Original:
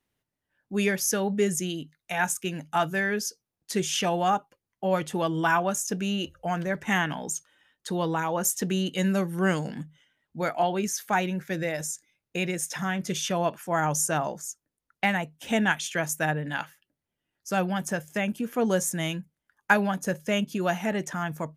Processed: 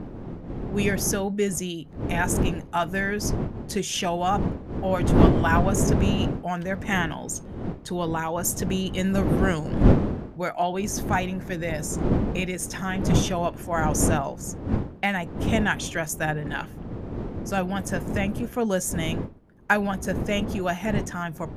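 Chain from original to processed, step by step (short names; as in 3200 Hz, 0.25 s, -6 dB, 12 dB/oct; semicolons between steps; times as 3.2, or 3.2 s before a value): wind noise 270 Hz -27 dBFS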